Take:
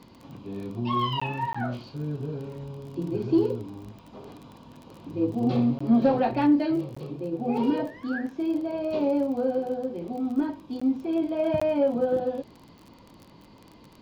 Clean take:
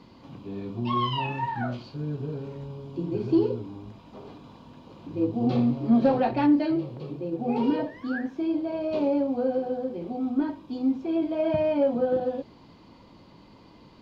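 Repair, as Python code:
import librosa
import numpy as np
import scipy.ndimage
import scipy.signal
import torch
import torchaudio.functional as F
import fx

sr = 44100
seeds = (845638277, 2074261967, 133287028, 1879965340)

y = fx.fix_declick_ar(x, sr, threshold=6.5)
y = fx.fix_interpolate(y, sr, at_s=(1.2, 1.53, 5.79, 6.95, 10.8, 11.6), length_ms=15.0)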